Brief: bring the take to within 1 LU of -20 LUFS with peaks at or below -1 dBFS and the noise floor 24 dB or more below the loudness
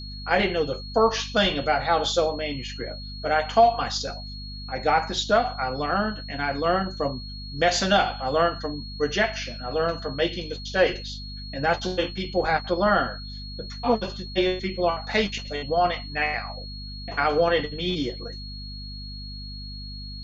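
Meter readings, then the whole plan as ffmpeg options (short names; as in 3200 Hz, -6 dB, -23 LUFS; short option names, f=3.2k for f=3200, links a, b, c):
hum 50 Hz; harmonics up to 250 Hz; hum level -35 dBFS; steady tone 4300 Hz; tone level -39 dBFS; loudness -25.0 LUFS; peak -7.5 dBFS; loudness target -20.0 LUFS
-> -af "bandreject=f=50:t=h:w=6,bandreject=f=100:t=h:w=6,bandreject=f=150:t=h:w=6,bandreject=f=200:t=h:w=6,bandreject=f=250:t=h:w=6"
-af "bandreject=f=4.3k:w=30"
-af "volume=5dB"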